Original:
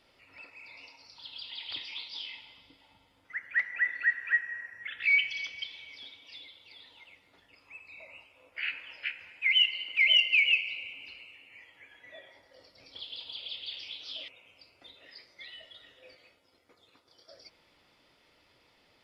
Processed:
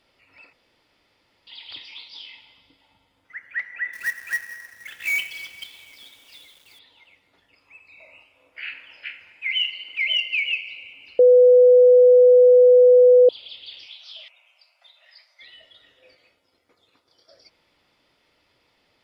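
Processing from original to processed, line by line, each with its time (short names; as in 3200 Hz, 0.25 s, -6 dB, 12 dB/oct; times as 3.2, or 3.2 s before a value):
0.53–1.47 room tone
3.93–6.79 companded quantiser 4-bit
7.95–9.96 flutter echo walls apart 7.5 m, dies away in 0.31 s
11.19–13.29 bleep 497 Hz -8.5 dBFS
13.86–15.42 steep high-pass 590 Hz 72 dB/oct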